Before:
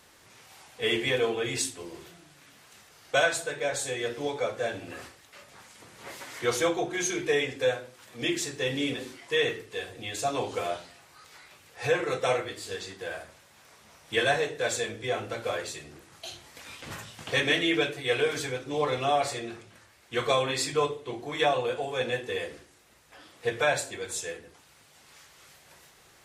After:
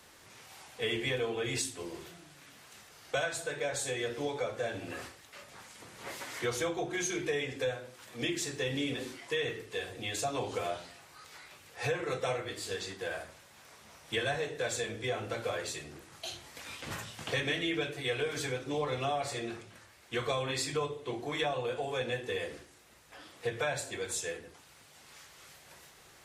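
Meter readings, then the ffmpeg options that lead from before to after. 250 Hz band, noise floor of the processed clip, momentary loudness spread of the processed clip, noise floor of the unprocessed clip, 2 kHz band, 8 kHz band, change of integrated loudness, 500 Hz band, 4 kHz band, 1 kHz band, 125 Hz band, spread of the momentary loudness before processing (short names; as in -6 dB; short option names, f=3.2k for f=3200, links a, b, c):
-4.5 dB, -58 dBFS, 20 LU, -58 dBFS, -6.0 dB, -4.0 dB, -6.0 dB, -6.0 dB, -5.5 dB, -7.0 dB, -1.5 dB, 16 LU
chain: -filter_complex "[0:a]acrossover=split=150[a][b];[b]acompressor=threshold=-32dB:ratio=3[c];[a][c]amix=inputs=2:normalize=0"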